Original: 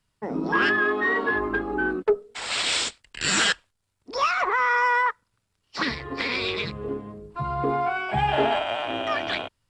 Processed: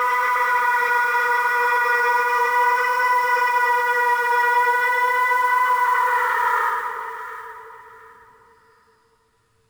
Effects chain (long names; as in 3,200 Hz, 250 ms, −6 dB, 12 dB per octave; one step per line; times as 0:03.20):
parametric band 1,100 Hz +4 dB 0.3 octaves
mains-hum notches 50/100/150/200/250/300/350/400/450 Hz
extreme stretch with random phases 14×, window 0.10 s, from 0:04.64
brickwall limiter −15 dBFS, peak gain reduction 7.5 dB
in parallel at −1.5 dB: compressor whose output falls as the input rises −28 dBFS, ratio −1
on the sum: noise that follows the level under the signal 24 dB
on a send: delay that swaps between a low-pass and a high-pass 357 ms, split 1,100 Hz, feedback 50%, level −6 dB